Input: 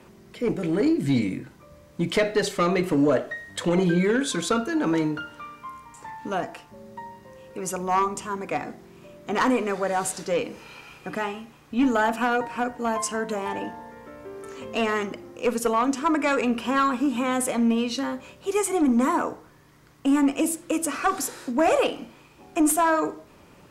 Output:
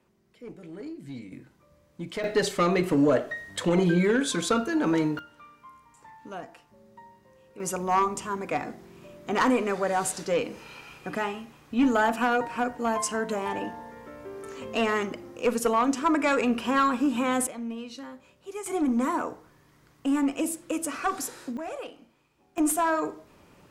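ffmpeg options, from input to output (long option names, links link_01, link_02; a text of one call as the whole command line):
ffmpeg -i in.wav -af "asetnsamples=nb_out_samples=441:pad=0,asendcmd='1.32 volume volume -11dB;2.24 volume volume -1dB;5.19 volume volume -11dB;7.6 volume volume -1dB;17.47 volume volume -13dB;18.66 volume volume -4.5dB;21.57 volume volume -16dB;22.58 volume volume -4dB',volume=-17.5dB" out.wav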